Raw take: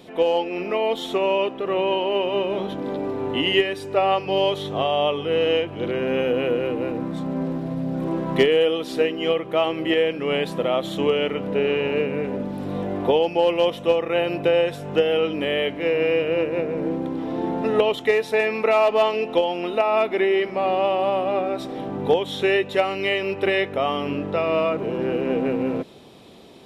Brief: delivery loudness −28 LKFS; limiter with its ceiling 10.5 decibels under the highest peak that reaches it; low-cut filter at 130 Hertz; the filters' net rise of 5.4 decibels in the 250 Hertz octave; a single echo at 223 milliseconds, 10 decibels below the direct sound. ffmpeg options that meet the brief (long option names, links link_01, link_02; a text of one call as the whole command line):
ffmpeg -i in.wav -af "highpass=130,equalizer=frequency=250:width_type=o:gain=7.5,alimiter=limit=-13dB:level=0:latency=1,aecho=1:1:223:0.316,volume=-5.5dB" out.wav